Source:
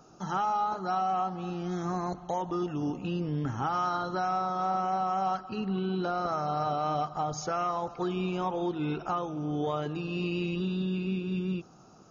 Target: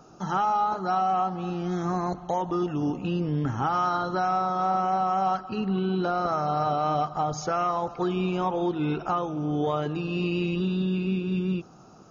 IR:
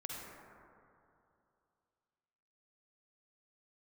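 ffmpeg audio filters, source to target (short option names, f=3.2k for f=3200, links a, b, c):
-af "highshelf=f=4.7k:g=-4.5,volume=4.5dB"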